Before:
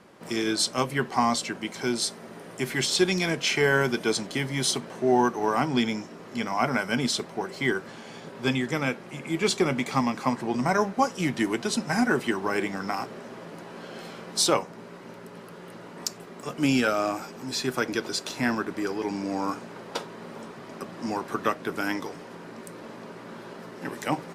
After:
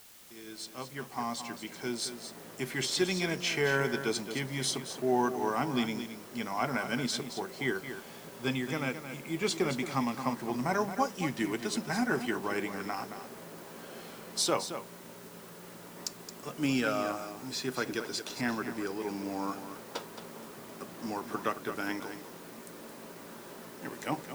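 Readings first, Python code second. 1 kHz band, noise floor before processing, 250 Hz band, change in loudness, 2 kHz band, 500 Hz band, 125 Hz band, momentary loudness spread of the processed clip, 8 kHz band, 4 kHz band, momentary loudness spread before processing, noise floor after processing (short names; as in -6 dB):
-6.5 dB, -44 dBFS, -6.5 dB, -6.5 dB, -6.5 dB, -6.5 dB, -6.5 dB, 17 LU, -6.5 dB, -6.5 dB, 19 LU, -49 dBFS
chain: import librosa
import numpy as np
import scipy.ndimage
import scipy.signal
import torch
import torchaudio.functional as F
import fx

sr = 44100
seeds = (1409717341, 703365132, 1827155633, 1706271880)

y = fx.fade_in_head(x, sr, length_s=2.33)
y = y + 10.0 ** (-10.0 / 20.0) * np.pad(y, (int(221 * sr / 1000.0), 0))[:len(y)]
y = fx.quant_dither(y, sr, seeds[0], bits=8, dither='triangular')
y = F.gain(torch.from_numpy(y), -6.5).numpy()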